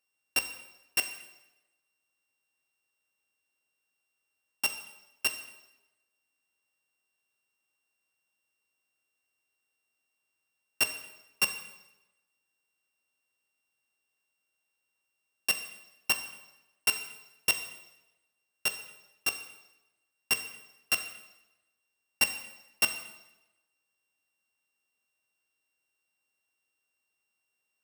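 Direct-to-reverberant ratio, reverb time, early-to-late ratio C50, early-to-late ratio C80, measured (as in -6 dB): 7.5 dB, 1.0 s, 10.0 dB, 12.0 dB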